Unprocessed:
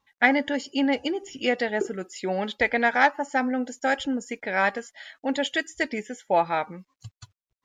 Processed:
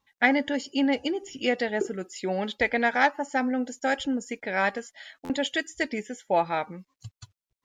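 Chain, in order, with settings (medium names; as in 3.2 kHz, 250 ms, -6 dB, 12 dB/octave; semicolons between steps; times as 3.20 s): peaking EQ 1.2 kHz -3 dB 2.1 oct; buffer glitch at 5.24 s, samples 512, times 4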